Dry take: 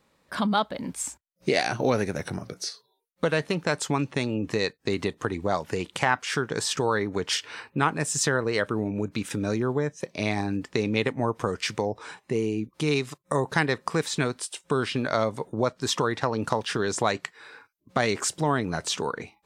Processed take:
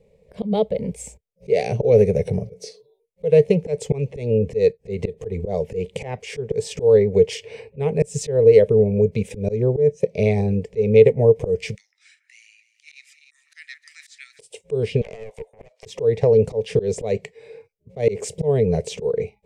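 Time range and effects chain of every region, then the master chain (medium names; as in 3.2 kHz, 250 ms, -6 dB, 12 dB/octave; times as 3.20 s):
11.75–14.39 s: rippled Chebyshev high-pass 1.3 kHz, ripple 6 dB + echo whose repeats swap between lows and highs 150 ms, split 1.9 kHz, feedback 58%, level -11 dB
15.01–15.86 s: steep high-pass 700 Hz + compression 12:1, threshold -35 dBFS + loudspeaker Doppler distortion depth 0.8 ms
whole clip: FFT filter 200 Hz 0 dB, 310 Hz -19 dB, 440 Hz +14 dB, 1.4 kHz -25 dB, 2.2 kHz +2 dB, 3.8 kHz -5 dB, 8 kHz +2 dB, 11 kHz 0 dB; slow attack 148 ms; tilt EQ -3 dB/octave; trim +2.5 dB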